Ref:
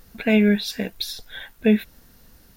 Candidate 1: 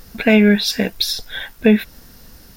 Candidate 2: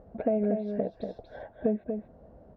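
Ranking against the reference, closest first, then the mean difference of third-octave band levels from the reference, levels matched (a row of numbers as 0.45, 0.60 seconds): 1, 2; 2.5, 11.0 decibels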